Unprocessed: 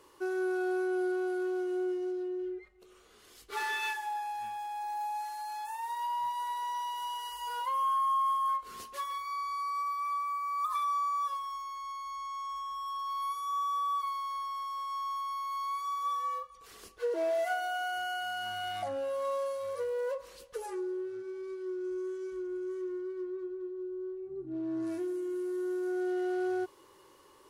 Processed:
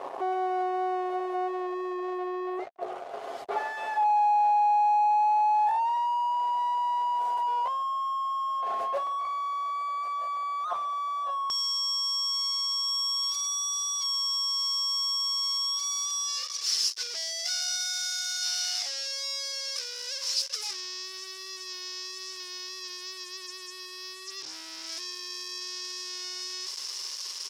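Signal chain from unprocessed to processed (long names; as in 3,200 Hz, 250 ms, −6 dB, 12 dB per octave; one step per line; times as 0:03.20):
comb filter 7.4 ms, depth 60%
fuzz pedal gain 60 dB, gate −58 dBFS
resonant band-pass 700 Hz, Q 7.4, from 0:11.50 5,300 Hz
level +1 dB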